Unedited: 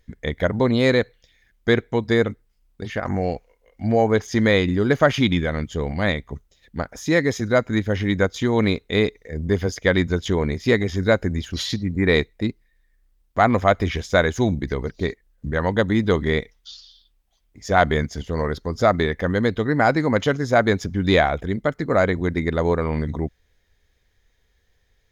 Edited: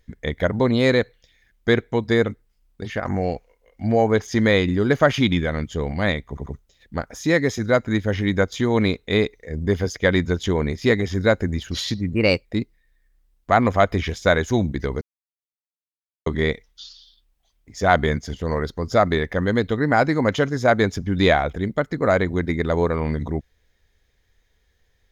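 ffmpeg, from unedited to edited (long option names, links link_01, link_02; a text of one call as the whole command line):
ffmpeg -i in.wav -filter_complex "[0:a]asplit=7[link_01][link_02][link_03][link_04][link_05][link_06][link_07];[link_01]atrim=end=6.372[link_08];[link_02]atrim=start=6.278:end=6.372[link_09];[link_03]atrim=start=6.278:end=11.974[link_10];[link_04]atrim=start=11.97:end=12.33,asetpts=PTS-STARTPTS,asetrate=52479,aresample=44100,atrim=end_sample=13341,asetpts=PTS-STARTPTS[link_11];[link_05]atrim=start=12.326:end=14.89,asetpts=PTS-STARTPTS,afade=type=out:start_time=2.56:duration=0.004:curve=hsin[link_12];[link_06]atrim=start=14.89:end=16.14,asetpts=PTS-STARTPTS,volume=0[link_13];[link_07]atrim=start=16.14,asetpts=PTS-STARTPTS,afade=type=in:duration=0.004:curve=hsin[link_14];[link_08][link_09]acrossfade=duration=0.004:curve1=hsin:curve2=hsin[link_15];[link_15][link_10]acrossfade=duration=0.004:curve1=hsin:curve2=hsin[link_16];[link_16][link_11]acrossfade=duration=0.004:curve1=hsin:curve2=hsin[link_17];[link_12][link_13][link_14]concat=n=3:v=0:a=1[link_18];[link_17][link_18]acrossfade=duration=0.004:curve1=hsin:curve2=hsin" out.wav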